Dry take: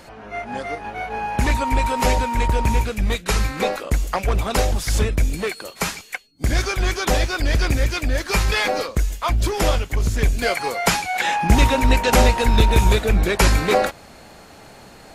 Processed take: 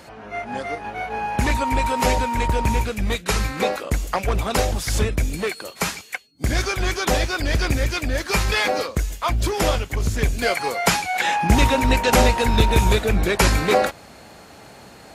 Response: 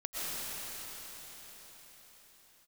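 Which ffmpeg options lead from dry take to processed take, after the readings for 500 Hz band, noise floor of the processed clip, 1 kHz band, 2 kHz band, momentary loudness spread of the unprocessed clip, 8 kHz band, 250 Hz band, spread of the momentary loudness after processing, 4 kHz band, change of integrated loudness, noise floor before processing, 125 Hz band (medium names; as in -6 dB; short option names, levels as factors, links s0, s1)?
0.0 dB, -44 dBFS, 0.0 dB, 0.0 dB, 10 LU, 0.0 dB, 0.0 dB, 10 LU, 0.0 dB, -1.0 dB, -44 dBFS, -2.0 dB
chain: -af "highpass=53"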